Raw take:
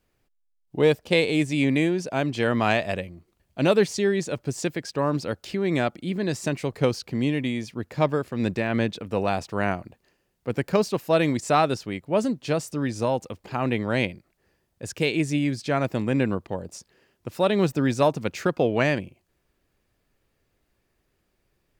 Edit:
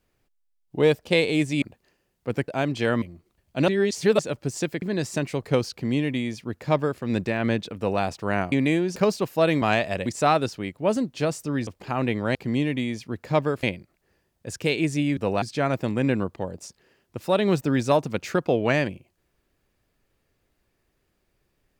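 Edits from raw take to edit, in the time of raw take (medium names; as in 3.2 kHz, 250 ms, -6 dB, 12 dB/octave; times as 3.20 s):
1.62–2.06 s: swap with 9.82–10.68 s
2.60–3.04 s: move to 11.34 s
3.70–4.21 s: reverse
4.84–6.12 s: delete
7.02–8.30 s: copy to 13.99 s
9.07–9.32 s: copy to 15.53 s
12.95–13.31 s: delete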